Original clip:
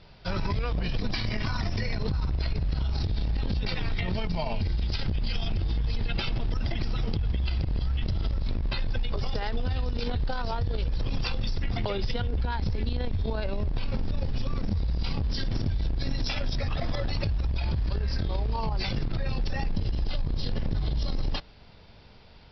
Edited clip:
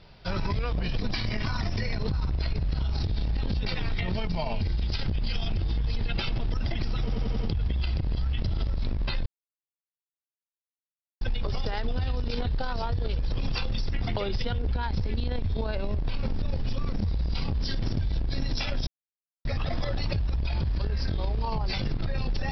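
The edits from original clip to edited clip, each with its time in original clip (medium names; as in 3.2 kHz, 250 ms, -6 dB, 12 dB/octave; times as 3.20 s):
7.01 s: stutter 0.09 s, 5 plays
8.90 s: insert silence 1.95 s
16.56 s: insert silence 0.58 s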